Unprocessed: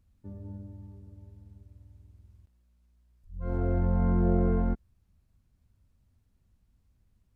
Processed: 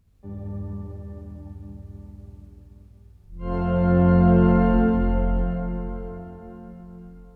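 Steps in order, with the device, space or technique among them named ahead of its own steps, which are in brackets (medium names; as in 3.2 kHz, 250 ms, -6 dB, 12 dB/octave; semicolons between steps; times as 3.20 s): shimmer-style reverb (harmony voices +12 st -10 dB; reverberation RT60 4.8 s, pre-delay 40 ms, DRR -5.5 dB); trim +3.5 dB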